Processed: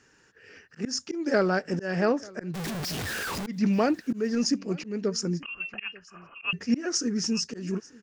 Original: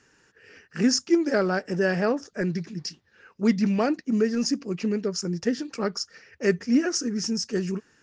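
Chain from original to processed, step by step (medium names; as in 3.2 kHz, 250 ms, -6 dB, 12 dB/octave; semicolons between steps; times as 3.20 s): 2.54–3.47 s: one-bit comparator; 5.42–6.53 s: frequency inversion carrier 3 kHz; on a send: delay 888 ms -23 dB; on the sum: slow attack 200 ms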